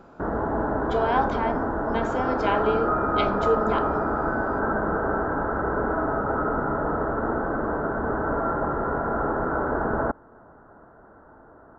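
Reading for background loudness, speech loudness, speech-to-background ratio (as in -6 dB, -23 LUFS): -26.0 LUFS, -28.0 LUFS, -2.0 dB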